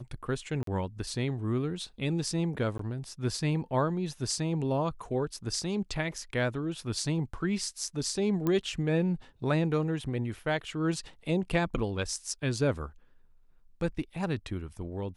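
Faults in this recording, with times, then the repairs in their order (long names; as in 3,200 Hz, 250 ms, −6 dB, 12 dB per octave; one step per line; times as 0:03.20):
0:00.63–0:00.67: drop-out 43 ms
0:02.78–0:02.79: drop-out 13 ms
0:08.47: click −17 dBFS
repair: click removal
repair the gap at 0:00.63, 43 ms
repair the gap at 0:02.78, 13 ms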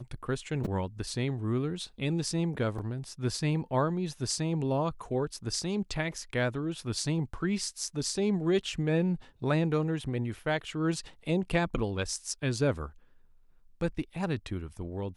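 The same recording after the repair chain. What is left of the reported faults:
none of them is left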